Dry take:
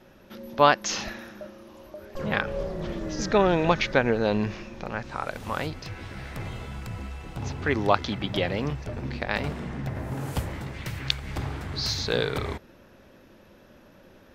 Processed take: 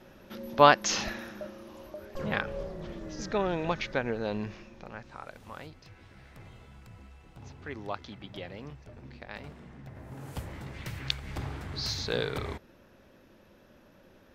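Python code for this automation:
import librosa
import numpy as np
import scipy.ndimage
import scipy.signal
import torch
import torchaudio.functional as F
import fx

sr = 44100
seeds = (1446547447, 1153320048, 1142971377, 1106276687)

y = fx.gain(x, sr, db=fx.line((1.81, 0.0), (2.87, -8.5), (4.41, -8.5), (5.73, -15.0), (9.85, -15.0), (10.78, -5.0)))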